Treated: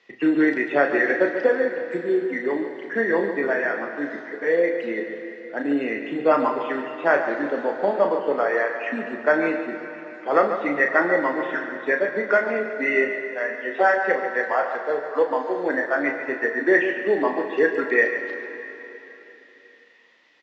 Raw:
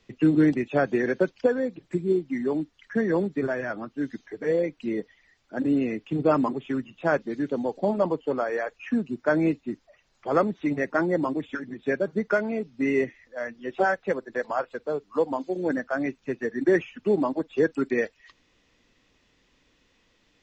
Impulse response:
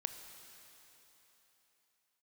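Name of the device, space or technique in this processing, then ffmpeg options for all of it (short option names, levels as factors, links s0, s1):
station announcement: -filter_complex "[0:a]highpass=410,lowpass=4300,equalizer=f=1900:t=o:w=0.24:g=9,aecho=1:1:34.99|142.9:0.447|0.316[s0];[1:a]atrim=start_sample=2205[s1];[s0][s1]afir=irnorm=-1:irlink=0,volume=2"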